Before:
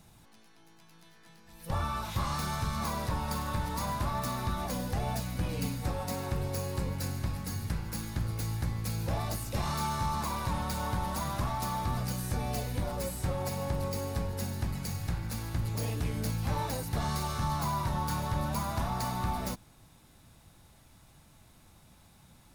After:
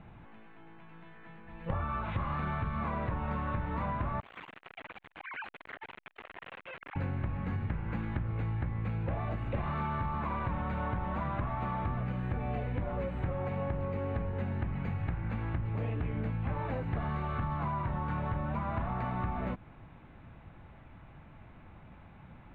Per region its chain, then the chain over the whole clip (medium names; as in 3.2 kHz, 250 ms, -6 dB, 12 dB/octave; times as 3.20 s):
4.20–6.96 s: formants replaced by sine waves + integer overflow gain 36 dB + transformer saturation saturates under 2.5 kHz
whole clip: inverse Chebyshev low-pass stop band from 4.9 kHz, stop band 40 dB; dynamic bell 890 Hz, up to -4 dB, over -51 dBFS, Q 6.9; compression, threshold -37 dBFS; trim +6.5 dB